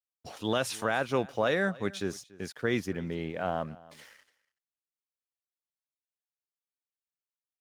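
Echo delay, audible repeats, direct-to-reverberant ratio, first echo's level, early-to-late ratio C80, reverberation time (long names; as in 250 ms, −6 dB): 286 ms, 1, no reverb audible, −21.5 dB, no reverb audible, no reverb audible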